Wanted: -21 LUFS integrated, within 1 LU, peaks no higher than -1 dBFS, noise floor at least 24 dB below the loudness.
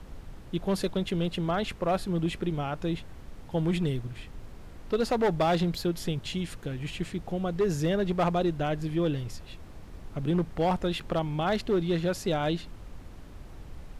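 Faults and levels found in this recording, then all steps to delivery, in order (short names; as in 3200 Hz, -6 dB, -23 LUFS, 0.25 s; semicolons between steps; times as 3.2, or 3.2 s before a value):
clipped 1.3%; flat tops at -20.0 dBFS; noise floor -46 dBFS; noise floor target -54 dBFS; loudness -29.5 LUFS; peak -20.0 dBFS; loudness target -21.0 LUFS
-> clip repair -20 dBFS; noise print and reduce 8 dB; gain +8.5 dB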